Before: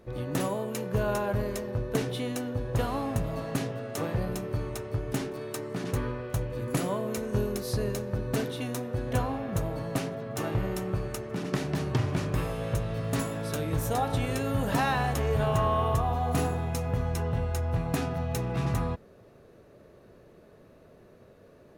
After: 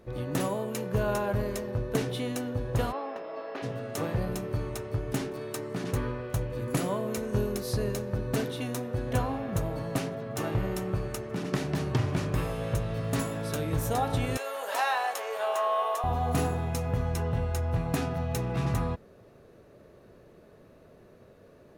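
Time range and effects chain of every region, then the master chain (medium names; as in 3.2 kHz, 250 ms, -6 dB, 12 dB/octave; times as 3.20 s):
2.91–3.62 s: high-pass 370 Hz 24 dB/octave + whistle 5.2 kHz -54 dBFS + distance through air 300 m
14.37–16.04 s: high-pass 540 Hz 24 dB/octave + doubling 20 ms -11 dB
whole clip: none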